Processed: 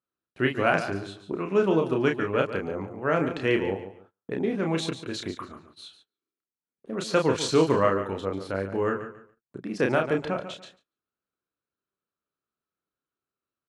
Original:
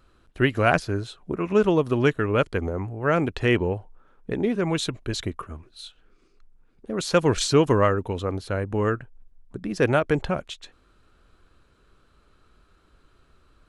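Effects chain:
double-tracking delay 31 ms −4.5 dB
on a send: repeating echo 143 ms, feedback 25%, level −11 dB
on the sum: noise gate −47 dBFS, range −27 dB
high-pass filter 160 Hz 12 dB per octave
high-shelf EQ 6,800 Hz −7 dB
level −3.5 dB

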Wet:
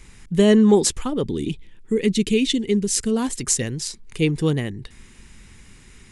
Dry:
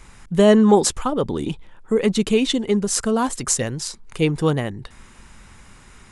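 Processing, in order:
flat-topped bell 900 Hz −8 dB, from 0:01.24 −16 dB, from 0:03.10 −9 dB

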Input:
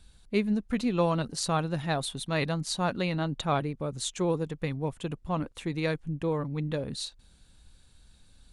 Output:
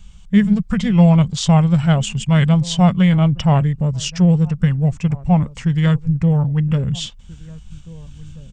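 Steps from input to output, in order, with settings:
low shelf with overshoot 240 Hz +7 dB, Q 3
slap from a distant wall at 280 metres, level −21 dB
formants moved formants −4 semitones
level +8.5 dB

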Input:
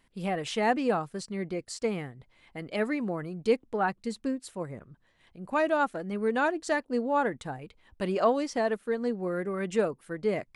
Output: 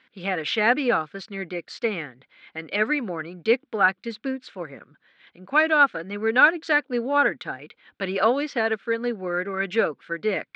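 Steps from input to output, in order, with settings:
loudspeaker in its box 280–4,400 Hz, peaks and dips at 380 Hz −4 dB, 650 Hz −5 dB, 920 Hz −6 dB, 1,500 Hz +9 dB, 2,300 Hz +6 dB, 3,500 Hz +5 dB
level +6.5 dB

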